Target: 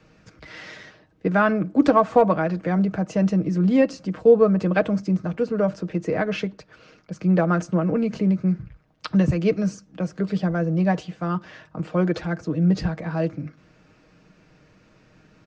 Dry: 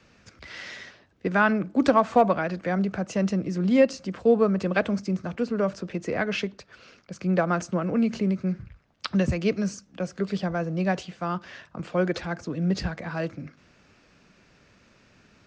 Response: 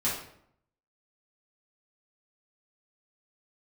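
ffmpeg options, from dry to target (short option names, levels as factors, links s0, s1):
-af "tiltshelf=f=1300:g=4,aecho=1:1:6.4:0.47"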